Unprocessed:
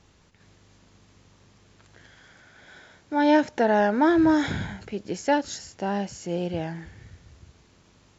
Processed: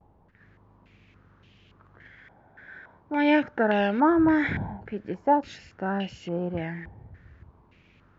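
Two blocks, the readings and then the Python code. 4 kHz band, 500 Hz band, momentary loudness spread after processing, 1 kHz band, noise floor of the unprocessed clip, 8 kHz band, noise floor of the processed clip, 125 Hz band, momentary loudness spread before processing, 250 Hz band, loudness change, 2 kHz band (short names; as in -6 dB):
-3.0 dB, -2.5 dB, 15 LU, -0.5 dB, -59 dBFS, n/a, -60 dBFS, 0.0 dB, 14 LU, -1.0 dB, -1.0 dB, +0.5 dB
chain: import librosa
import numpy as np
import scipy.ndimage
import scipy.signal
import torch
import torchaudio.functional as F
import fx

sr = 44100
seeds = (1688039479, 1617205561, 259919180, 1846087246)

y = fx.vibrato(x, sr, rate_hz=0.47, depth_cents=37.0)
y = fx.peak_eq(y, sr, hz=1100.0, db=-6.0, octaves=2.6)
y = fx.filter_held_lowpass(y, sr, hz=3.5, low_hz=840.0, high_hz=2900.0)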